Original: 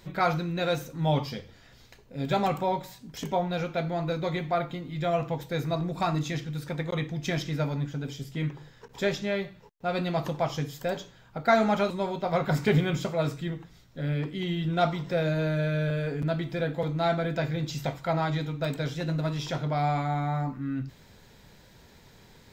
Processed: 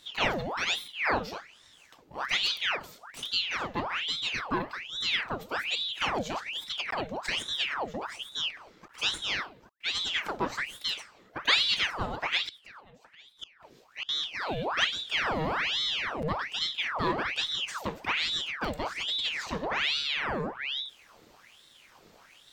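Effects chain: 12.46–14.09 s: inverted gate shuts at -24 dBFS, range -25 dB; ring modulator with a swept carrier 2 kHz, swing 85%, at 1.2 Hz

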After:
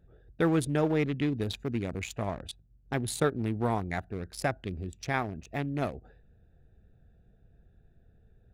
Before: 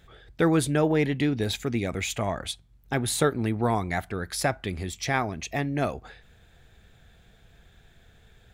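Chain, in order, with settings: local Wiener filter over 41 samples; trim -3.5 dB

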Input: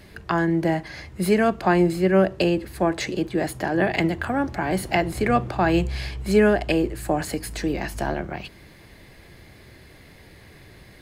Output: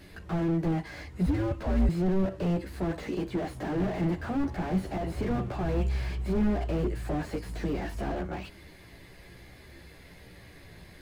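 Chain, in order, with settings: chorus voices 6, 0.34 Hz, delay 14 ms, depth 3.8 ms; 1.26–1.89 s: frequency shift -120 Hz; slew-rate limiter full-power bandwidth 17 Hz

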